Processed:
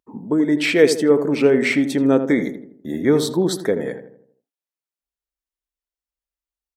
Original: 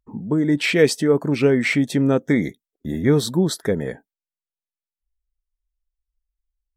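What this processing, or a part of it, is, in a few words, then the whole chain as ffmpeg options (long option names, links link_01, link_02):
filter by subtraction: -filter_complex "[0:a]equalizer=frequency=290:width_type=o:width=0.79:gain=3.5,asplit=2[link_01][link_02];[link_02]lowpass=520,volume=-1[link_03];[link_01][link_03]amix=inputs=2:normalize=0,asplit=2[link_04][link_05];[link_05]adelay=81,lowpass=frequency=1300:poles=1,volume=-8.5dB,asplit=2[link_06][link_07];[link_07]adelay=81,lowpass=frequency=1300:poles=1,volume=0.49,asplit=2[link_08][link_09];[link_09]adelay=81,lowpass=frequency=1300:poles=1,volume=0.49,asplit=2[link_10][link_11];[link_11]adelay=81,lowpass=frequency=1300:poles=1,volume=0.49,asplit=2[link_12][link_13];[link_13]adelay=81,lowpass=frequency=1300:poles=1,volume=0.49,asplit=2[link_14][link_15];[link_15]adelay=81,lowpass=frequency=1300:poles=1,volume=0.49[link_16];[link_04][link_06][link_08][link_10][link_12][link_14][link_16]amix=inputs=7:normalize=0"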